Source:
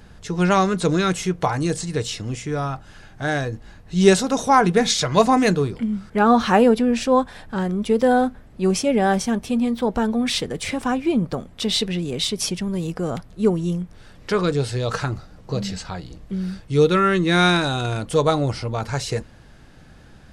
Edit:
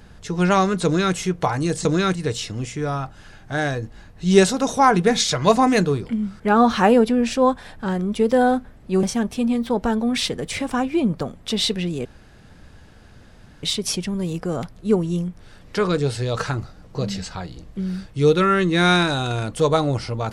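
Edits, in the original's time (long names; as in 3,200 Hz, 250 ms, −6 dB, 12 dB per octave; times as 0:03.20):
0:00.85–0:01.15: duplicate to 0:01.85
0:08.73–0:09.15: remove
0:12.17: splice in room tone 1.58 s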